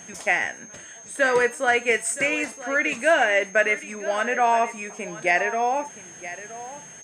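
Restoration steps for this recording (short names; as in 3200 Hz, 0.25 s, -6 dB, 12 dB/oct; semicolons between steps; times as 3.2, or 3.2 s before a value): de-click; notch 6400 Hz, Q 30; inverse comb 0.971 s -15 dB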